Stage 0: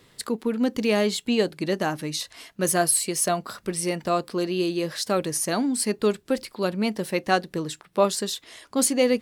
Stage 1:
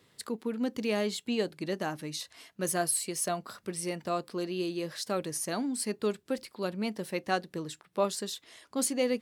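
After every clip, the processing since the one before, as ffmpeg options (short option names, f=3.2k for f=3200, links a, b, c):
-af "highpass=67,volume=-8dB"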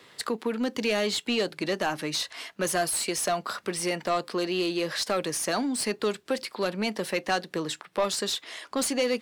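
-filter_complex "[0:a]acrossover=split=170|3000[a][b][c];[b]acompressor=threshold=-36dB:ratio=2[d];[a][d][c]amix=inputs=3:normalize=0,asplit=2[e][f];[f]highpass=f=720:p=1,volume=19dB,asoftclip=type=tanh:threshold=-16dB[g];[e][g]amix=inputs=2:normalize=0,lowpass=f=3.5k:p=1,volume=-6dB,volume=2dB"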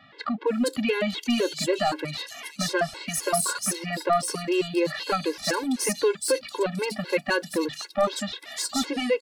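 -filter_complex "[0:a]acrossover=split=3600[a][b];[b]adelay=470[c];[a][c]amix=inputs=2:normalize=0,afftfilt=real='re*gt(sin(2*PI*3.9*pts/sr)*(1-2*mod(floor(b*sr/1024/280),2)),0)':imag='im*gt(sin(2*PI*3.9*pts/sr)*(1-2*mod(floor(b*sr/1024/280),2)),0)':win_size=1024:overlap=0.75,volume=6dB"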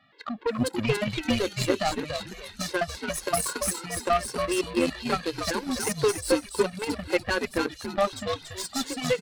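-filter_complex "[0:a]asplit=5[a][b][c][d][e];[b]adelay=284,afreqshift=-110,volume=-4dB[f];[c]adelay=568,afreqshift=-220,volume=-13.9dB[g];[d]adelay=852,afreqshift=-330,volume=-23.8dB[h];[e]adelay=1136,afreqshift=-440,volume=-33.7dB[i];[a][f][g][h][i]amix=inputs=5:normalize=0,aeval=exprs='0.316*(cos(1*acos(clip(val(0)/0.316,-1,1)))-cos(1*PI/2))+0.0355*(cos(3*acos(clip(val(0)/0.316,-1,1)))-cos(3*PI/2))+0.0158*(cos(7*acos(clip(val(0)/0.316,-1,1)))-cos(7*PI/2))':c=same,volume=1dB"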